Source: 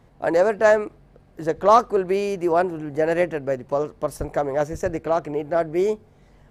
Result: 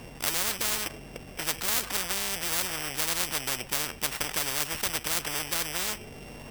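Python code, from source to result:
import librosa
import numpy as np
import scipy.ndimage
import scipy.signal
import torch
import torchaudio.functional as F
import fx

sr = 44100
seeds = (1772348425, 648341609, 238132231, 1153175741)

y = np.r_[np.sort(x[:len(x) // 16 * 16].reshape(-1, 16), axis=1).ravel(), x[len(x) // 16 * 16:]]
y = fx.spectral_comp(y, sr, ratio=10.0)
y = y * librosa.db_to_amplitude(-2.5)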